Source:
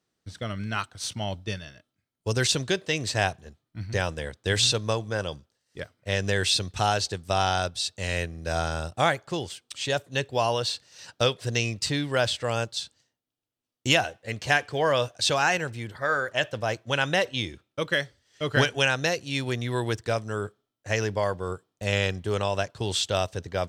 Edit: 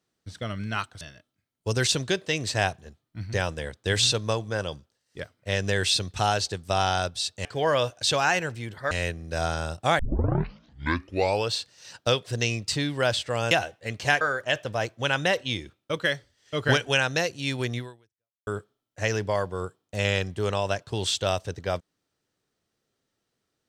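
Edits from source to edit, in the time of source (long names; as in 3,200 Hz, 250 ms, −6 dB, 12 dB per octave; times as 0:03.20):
0:01.01–0:01.61: remove
0:09.13: tape start 1.56 s
0:12.65–0:13.93: remove
0:14.63–0:16.09: move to 0:08.05
0:19.66–0:20.35: fade out exponential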